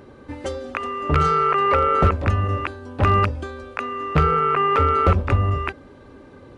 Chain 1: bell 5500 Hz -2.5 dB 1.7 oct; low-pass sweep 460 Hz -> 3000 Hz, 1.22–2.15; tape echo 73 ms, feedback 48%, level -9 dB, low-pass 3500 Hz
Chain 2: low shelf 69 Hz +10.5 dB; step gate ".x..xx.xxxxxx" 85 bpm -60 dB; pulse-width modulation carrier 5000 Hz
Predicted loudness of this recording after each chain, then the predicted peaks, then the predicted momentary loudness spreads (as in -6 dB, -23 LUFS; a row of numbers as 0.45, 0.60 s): -18.0, -19.5 LUFS; -1.5, -2.5 dBFS; 14, 8 LU